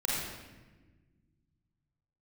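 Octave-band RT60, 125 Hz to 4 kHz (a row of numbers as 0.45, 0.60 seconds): 2.9, 2.3, 1.5, 1.1, 1.2, 0.90 seconds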